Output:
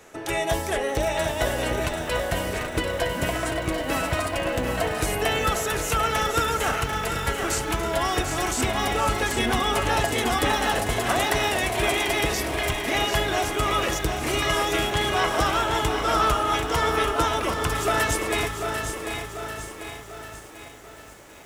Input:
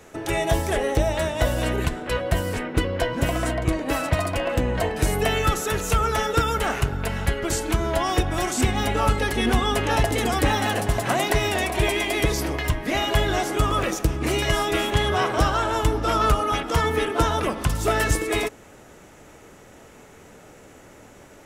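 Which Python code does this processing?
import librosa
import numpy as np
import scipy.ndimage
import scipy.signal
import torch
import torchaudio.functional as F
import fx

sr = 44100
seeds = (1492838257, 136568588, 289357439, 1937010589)

y = fx.low_shelf(x, sr, hz=330.0, db=-7.5)
y = fx.echo_feedback(y, sr, ms=780, feedback_pct=36, wet_db=-10)
y = fx.echo_crushed(y, sr, ms=743, feedback_pct=55, bits=8, wet_db=-7.5)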